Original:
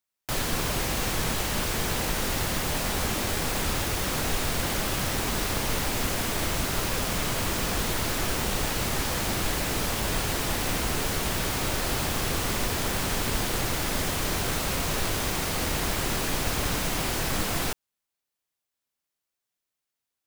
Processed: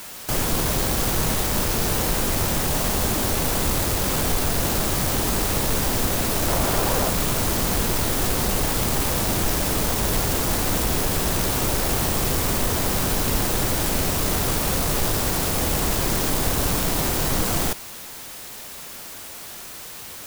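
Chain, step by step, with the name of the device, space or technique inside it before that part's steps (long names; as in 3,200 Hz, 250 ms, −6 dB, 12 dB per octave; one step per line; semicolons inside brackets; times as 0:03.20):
early CD player with a faulty converter (converter with a step at zero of −32.5 dBFS; converter with an unsteady clock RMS 0.13 ms)
0:06.48–0:07.10: parametric band 750 Hz +5.5 dB 1.8 octaves
level +4 dB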